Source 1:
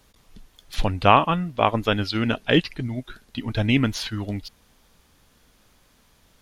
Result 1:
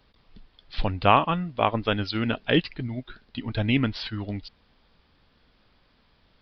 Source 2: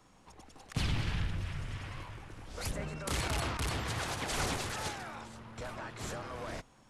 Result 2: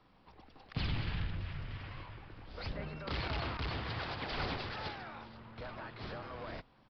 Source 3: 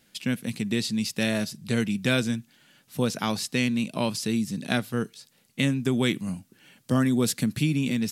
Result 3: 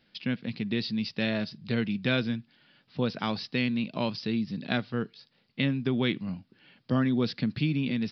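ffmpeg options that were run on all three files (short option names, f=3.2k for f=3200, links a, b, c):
-af "aresample=11025,aresample=44100,volume=-3dB"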